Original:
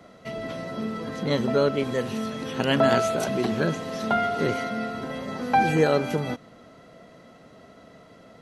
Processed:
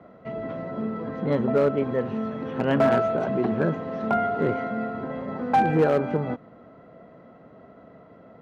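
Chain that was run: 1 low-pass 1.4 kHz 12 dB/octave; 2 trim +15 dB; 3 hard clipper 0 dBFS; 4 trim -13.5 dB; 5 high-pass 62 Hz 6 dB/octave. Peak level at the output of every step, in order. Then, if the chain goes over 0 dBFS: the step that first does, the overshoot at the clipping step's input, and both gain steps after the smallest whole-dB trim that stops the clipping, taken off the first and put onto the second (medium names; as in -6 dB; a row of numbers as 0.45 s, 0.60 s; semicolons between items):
-9.0 dBFS, +6.0 dBFS, 0.0 dBFS, -13.5 dBFS, -12.0 dBFS; step 2, 6.0 dB; step 2 +9 dB, step 4 -7.5 dB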